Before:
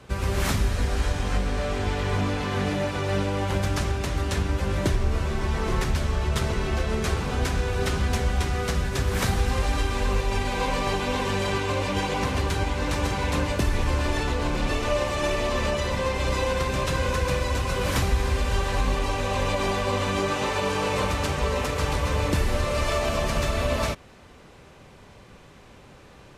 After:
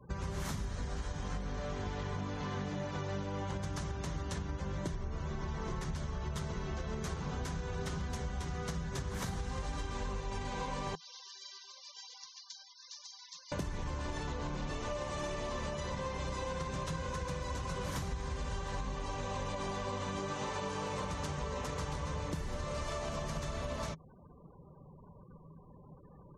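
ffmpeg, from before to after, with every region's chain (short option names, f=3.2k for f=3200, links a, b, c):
-filter_complex "[0:a]asettb=1/sr,asplit=3[a][b][c];[a]atrim=end=10.954[d];[b]atrim=start=10.95:end=13.52,asetpts=PTS-STARTPTS,afade=t=in:d=0.004:c=qsin,afade=t=out:st=2.566:d=0.004:c=qsin,bandpass=f=5k:t=q:w=3.3,aecho=1:1:138:0.0708,atrim=end_sample=113337[e];[c]atrim=start=13.516[f];[d][e]acrossfade=d=0.004:c1=hsin:c2=qsin[g];[g][f]acrossfade=d=0.004:c1=qsin:c2=hsin,equalizer=f=160:t=o:w=0.33:g=11,equalizer=f=1k:t=o:w=0.33:g=4,equalizer=f=2.5k:t=o:w=0.33:g=-5,equalizer=f=6.3k:t=o:w=0.33:g=5,afftfilt=real='re*gte(hypot(re,im),0.00794)':imag='im*gte(hypot(re,im),0.00794)':win_size=1024:overlap=0.75,acompressor=threshold=-27dB:ratio=6,volume=-7.5dB"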